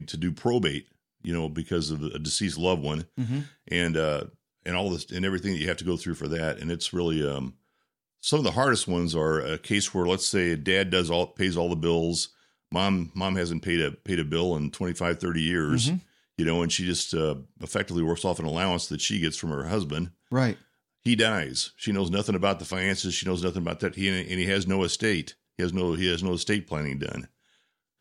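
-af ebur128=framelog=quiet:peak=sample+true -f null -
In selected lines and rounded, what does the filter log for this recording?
Integrated loudness:
  I:         -27.1 LUFS
  Threshold: -37.4 LUFS
Loudness range:
  LRA:         3.7 LU
  Threshold: -47.3 LUFS
  LRA low:   -29.0 LUFS
  LRA high:  -25.4 LUFS
Sample peak:
  Peak:       -8.7 dBFS
True peak:
  Peak:       -8.7 dBFS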